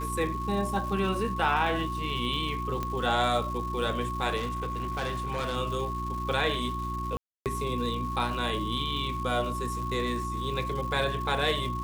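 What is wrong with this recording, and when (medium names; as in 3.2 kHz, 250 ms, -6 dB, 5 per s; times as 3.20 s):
crackle 450 per s -38 dBFS
hum 60 Hz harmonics 6 -35 dBFS
whine 1.1 kHz -33 dBFS
2.83 s: pop -18 dBFS
4.36–5.57 s: clipped -27 dBFS
7.17–7.46 s: dropout 288 ms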